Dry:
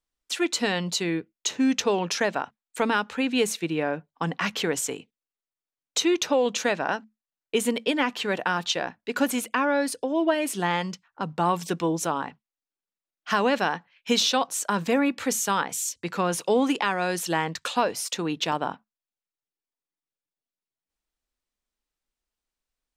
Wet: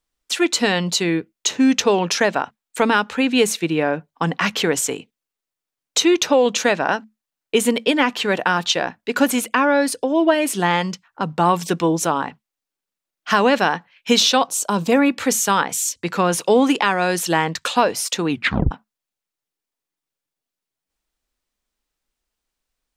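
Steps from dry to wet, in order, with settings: 14.5–14.92 bell 1800 Hz -14 dB 0.74 oct; 18.3 tape stop 0.41 s; gain +7 dB

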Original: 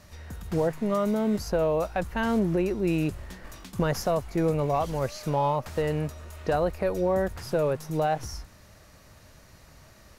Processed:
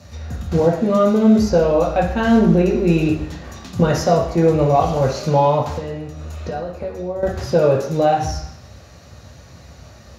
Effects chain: 5.71–7.23 compressor 8:1, threshold -35 dBFS, peak gain reduction 14 dB; reverb RT60 0.70 s, pre-delay 3 ms, DRR -3 dB; gain +1.5 dB

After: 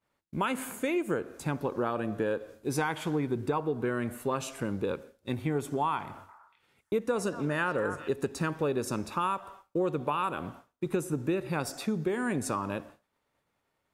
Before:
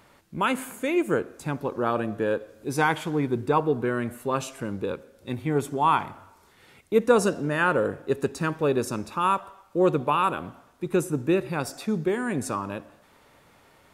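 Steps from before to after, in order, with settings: expander -43 dBFS; compressor 6:1, threshold -26 dBFS, peak gain reduction 12.5 dB; 6.05–8.09 delay with a stepping band-pass 0.237 s, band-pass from 1200 Hz, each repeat 1.4 oct, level -6.5 dB

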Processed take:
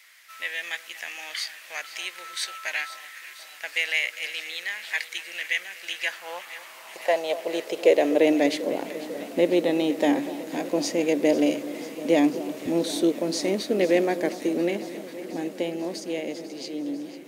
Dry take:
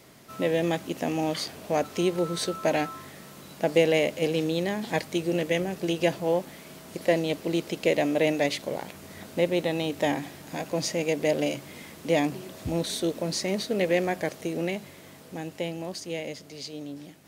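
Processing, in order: high-pass sweep 1900 Hz -> 280 Hz, 5.84–8.49; on a send: echo with dull and thin repeats by turns 0.247 s, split 1200 Hz, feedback 86%, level -14 dB

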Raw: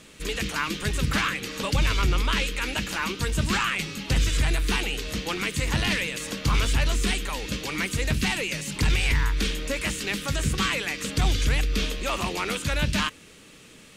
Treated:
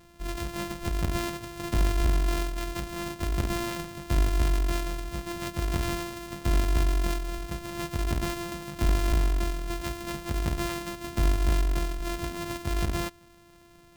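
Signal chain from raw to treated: sample sorter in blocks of 128 samples; low shelf 110 Hz +8 dB; formant shift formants -3 st; gain -6.5 dB

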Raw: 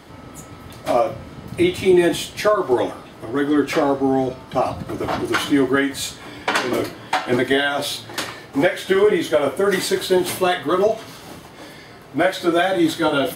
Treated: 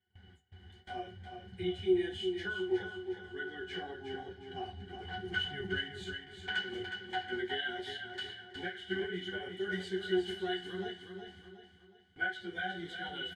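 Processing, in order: 5.24–5.76 octaver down 1 oct, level 0 dB; flange 0.73 Hz, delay 7.7 ms, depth 7 ms, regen -17%; octave resonator F#, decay 0.11 s; gate with hold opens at -42 dBFS; graphic EQ 125/250/500/1000/2000/4000/8000 Hz -9/-7/-9/-10/+10/+5/+9 dB; feedback echo 0.364 s, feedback 41%, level -7 dB

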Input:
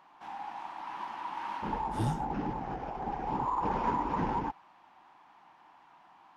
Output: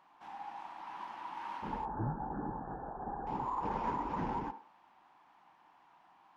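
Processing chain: 1.85–3.27 brick-wall FIR low-pass 1800 Hz; on a send: reverb RT60 0.45 s, pre-delay 38 ms, DRR 11.5 dB; on the sum: gain -5.5 dB

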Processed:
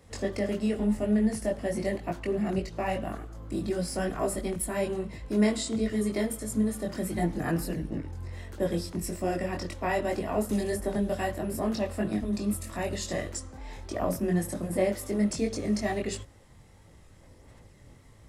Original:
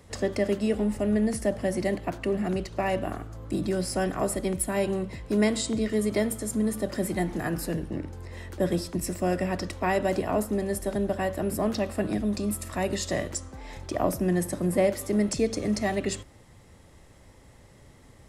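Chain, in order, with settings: chorus voices 4, 1.5 Hz, delay 21 ms, depth 3 ms; 10.49–11.33 three-band squash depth 100%

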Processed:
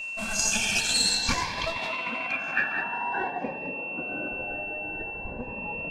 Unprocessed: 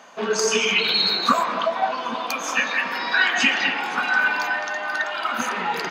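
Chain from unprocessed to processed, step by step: minimum comb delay 1.2 ms; 1.79–4.32 HPF 160 Hz 24 dB/oct; modulation noise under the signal 12 dB; low-pass sweep 8300 Hz -> 510 Hz, 1.02–3.68; whine 2700 Hz -27 dBFS; cascading phaser rising 0.51 Hz; gain -4.5 dB

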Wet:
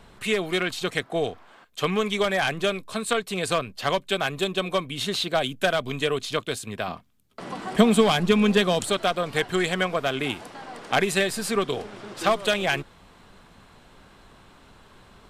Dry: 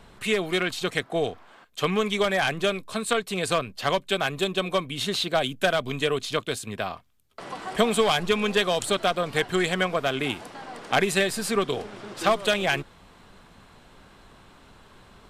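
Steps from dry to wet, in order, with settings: 6.88–8.84 bell 210 Hz +9 dB 1.3 oct

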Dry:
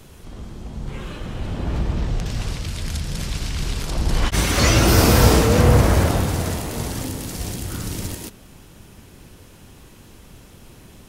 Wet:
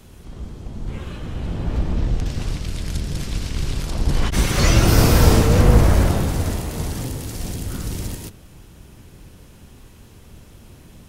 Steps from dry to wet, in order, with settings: octaver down 1 oct, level +3 dB; gain -2.5 dB

